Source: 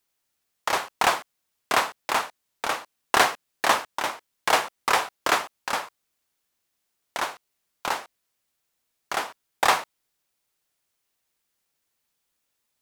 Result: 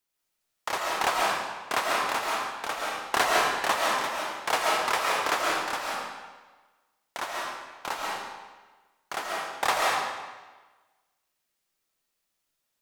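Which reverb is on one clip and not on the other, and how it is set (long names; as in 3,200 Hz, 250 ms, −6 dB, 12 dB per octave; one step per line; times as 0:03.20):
comb and all-pass reverb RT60 1.3 s, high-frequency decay 0.9×, pre-delay 95 ms, DRR −3 dB
level −6 dB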